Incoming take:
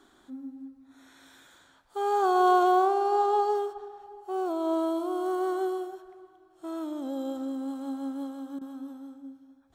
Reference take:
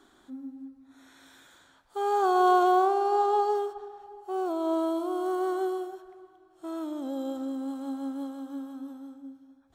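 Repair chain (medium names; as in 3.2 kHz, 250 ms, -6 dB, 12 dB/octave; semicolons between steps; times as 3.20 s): interpolate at 8.59 s, 22 ms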